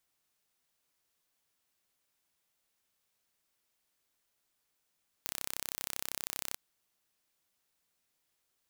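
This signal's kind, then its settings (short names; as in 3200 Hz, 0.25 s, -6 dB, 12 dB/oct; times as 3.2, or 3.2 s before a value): pulse train 32.7/s, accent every 0, -9 dBFS 1.29 s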